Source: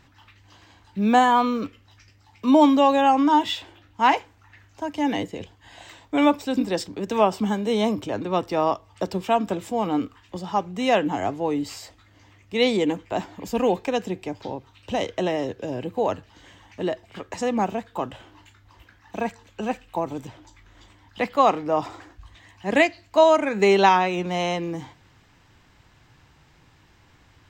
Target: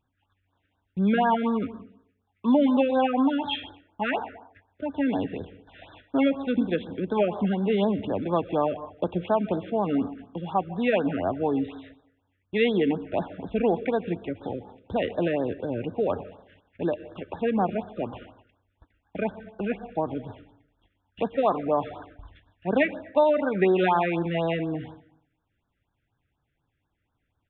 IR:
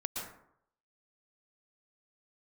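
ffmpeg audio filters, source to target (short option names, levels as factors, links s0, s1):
-filter_complex "[0:a]aresample=8000,aresample=44100,acompressor=threshold=0.112:ratio=2,asetrate=41625,aresample=44100,atempo=1.05946,agate=range=0.1:threshold=0.00398:ratio=16:detection=peak,bandreject=f=3000:w=17,asplit=2[s0][s1];[1:a]atrim=start_sample=2205[s2];[s1][s2]afir=irnorm=-1:irlink=0,volume=0.2[s3];[s0][s3]amix=inputs=2:normalize=0,afftfilt=real='re*(1-between(b*sr/1024,850*pow(2500/850,0.5+0.5*sin(2*PI*4.1*pts/sr))/1.41,850*pow(2500/850,0.5+0.5*sin(2*PI*4.1*pts/sr))*1.41))':imag='im*(1-between(b*sr/1024,850*pow(2500/850,0.5+0.5*sin(2*PI*4.1*pts/sr))/1.41,850*pow(2500/850,0.5+0.5*sin(2*PI*4.1*pts/sr))*1.41))':win_size=1024:overlap=0.75,volume=0.841"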